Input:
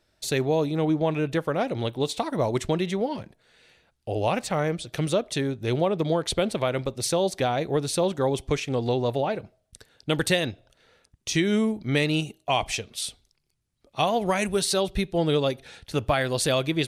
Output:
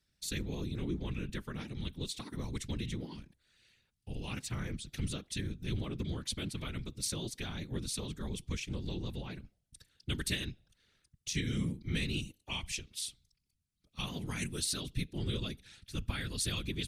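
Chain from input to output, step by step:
dynamic equaliser 640 Hz, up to −6 dB, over −39 dBFS, Q 1.7
random phases in short frames
guitar amp tone stack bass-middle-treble 6-0-2
level +7.5 dB

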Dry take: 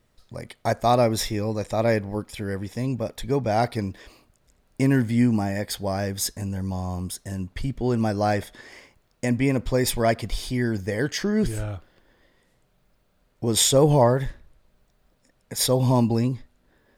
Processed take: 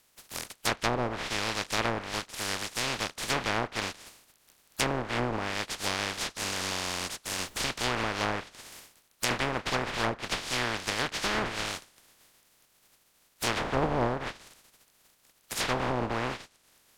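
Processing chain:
compressing power law on the bin magnitudes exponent 0.11
treble cut that deepens with the level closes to 810 Hz, closed at −15.5 dBFS
0:07.26–0:07.67: background noise pink −54 dBFS

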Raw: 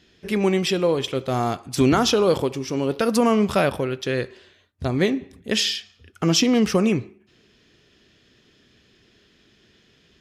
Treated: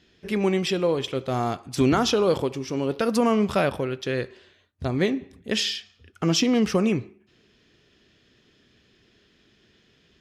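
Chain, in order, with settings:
high-shelf EQ 8,300 Hz −6 dB
level −2.5 dB

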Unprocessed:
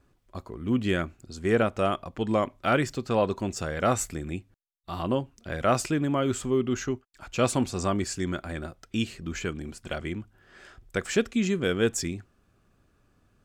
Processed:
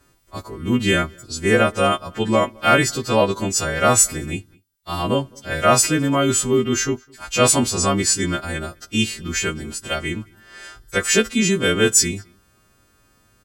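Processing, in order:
every partial snapped to a pitch grid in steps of 2 semitones
slap from a distant wall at 36 metres, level −28 dB
level +7.5 dB

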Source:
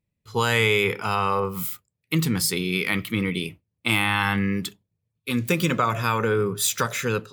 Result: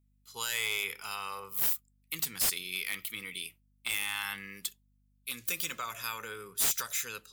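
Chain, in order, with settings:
first-order pre-emphasis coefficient 0.97
wave folding −21.5 dBFS
mains hum 50 Hz, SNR 34 dB

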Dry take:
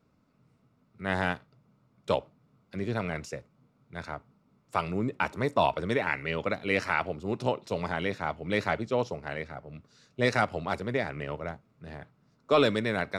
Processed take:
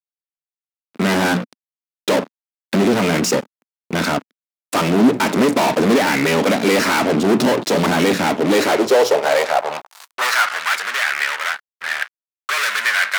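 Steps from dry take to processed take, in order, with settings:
mains-hum notches 60/120/180 Hz
in parallel at +2.5 dB: downward compressor 20 to 1, threshold −37 dBFS, peak gain reduction 20 dB
on the sum: fuzz pedal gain 41 dB, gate −47 dBFS
high-pass filter sweep 240 Hz → 1,600 Hz, 0:08.25–0:10.65
level −2 dB

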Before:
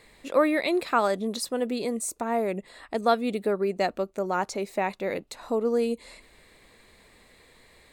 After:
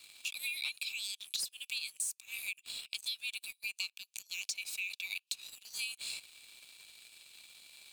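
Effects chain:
Chebyshev high-pass filter 2,300 Hz, order 10
leveller curve on the samples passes 2
downward compressor 8 to 1, threshold −42 dBFS, peak gain reduction 17 dB
level +6.5 dB

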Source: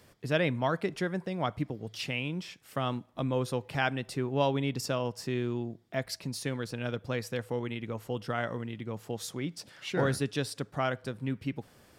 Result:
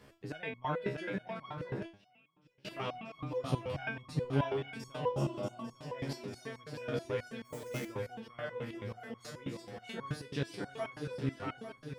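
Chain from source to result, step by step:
delay that plays each chunk backwards 587 ms, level −13 dB
high-shelf EQ 5,100 Hz −12 dB
hum removal 86.7 Hz, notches 15
0:03.49–0:04.25: bass and treble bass +10 dB, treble +3 dB
on a send: feedback echo with a long and a short gap by turns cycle 847 ms, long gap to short 3 to 1, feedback 45%, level −8 dB
0:01.85–0:02.65: on the sum: gate with flip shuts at −29 dBFS, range −29 dB
0:05.19–0:05.58: healed spectral selection 200–5,300 Hz after
in parallel at −1.5 dB: downward compressor, threshold −43 dBFS, peak gain reduction 19.5 dB
0:07.44–0:07.86: on the sum: sample-rate reduction 8,300 Hz, jitter 20%
step-sequenced resonator 9.3 Hz 68–1,100 Hz
level +5 dB

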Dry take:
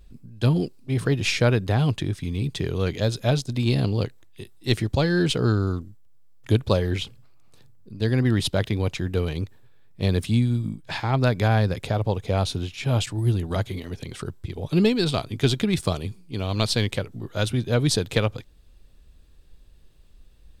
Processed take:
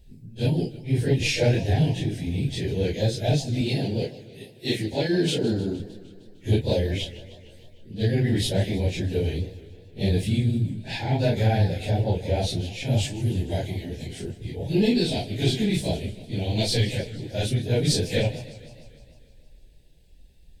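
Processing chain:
random phases in long frames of 100 ms
0:03.61–0:05.80: high-pass filter 160 Hz 12 dB per octave
soft clipping −10.5 dBFS, distortion −23 dB
Butterworth band-reject 1,200 Hz, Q 1.3
feedback echo with a swinging delay time 153 ms, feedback 65%, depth 207 cents, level −17 dB

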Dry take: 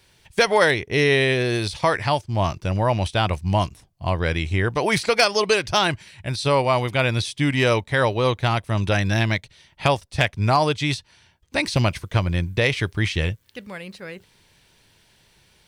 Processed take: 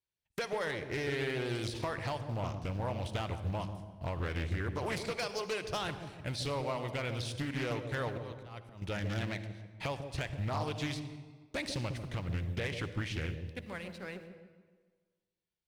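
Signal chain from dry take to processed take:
mu-law and A-law mismatch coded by A
noise gate −50 dBFS, range −25 dB
downward compressor 6 to 1, threshold −27 dBFS, peak gain reduction 14 dB
0:08.06–0:08.82: volume swells 368 ms
hard clipping −24 dBFS, distortion −16 dB
delay with a low-pass on its return 146 ms, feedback 43%, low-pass 550 Hz, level −5 dB
convolution reverb RT60 1.5 s, pre-delay 47 ms, DRR 11.5 dB
highs frequency-modulated by the lows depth 0.52 ms
level −5.5 dB

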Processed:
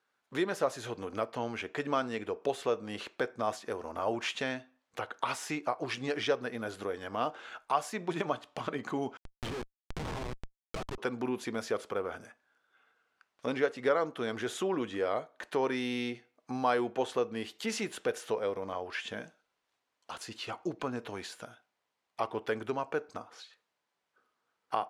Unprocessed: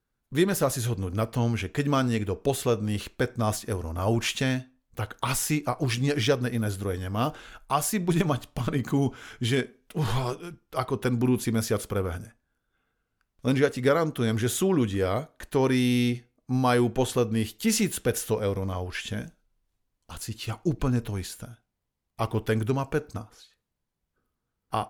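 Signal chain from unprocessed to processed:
high-pass filter 590 Hz 12 dB per octave
spectral tilt −2.5 dB per octave
in parallel at +2 dB: downward compressor 10 to 1, threshold −39 dBFS, peak gain reduction 20 dB
0:09.17–0:10.98: on the sum: comparator with hysteresis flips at −28.5 dBFS
high-frequency loss of the air 55 metres
one half of a high-frequency compander encoder only
level −4 dB

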